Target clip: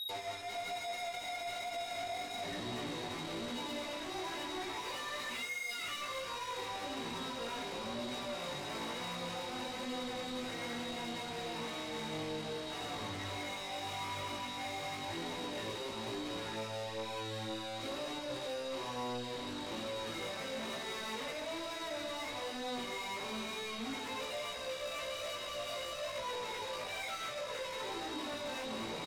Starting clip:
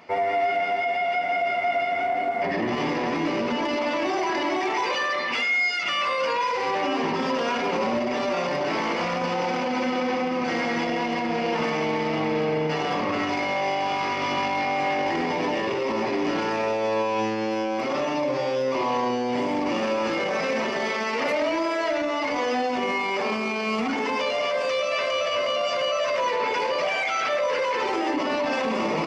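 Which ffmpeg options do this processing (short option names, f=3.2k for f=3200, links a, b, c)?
-filter_complex "[0:a]asplit=2[a][b];[b]adelay=250,highpass=300,lowpass=3.4k,asoftclip=type=hard:threshold=-24dB,volume=-9dB[c];[a][c]amix=inputs=2:normalize=0,aeval=exprs='val(0)+0.0316*sin(2*PI*3800*n/s)':c=same,equalizer=f=97:w=2.1:g=14.5,afftfilt=real='re*gte(hypot(re,im),0.02)':imag='im*gte(hypot(re,im),0.02)':win_size=1024:overlap=0.75,alimiter=limit=-22.5dB:level=0:latency=1:release=30,asoftclip=type=tanh:threshold=-37dB,flanger=delay=16:depth=3.6:speed=1.1,volume=1.5dB" -ar 44100 -c:a libmp3lame -b:a 112k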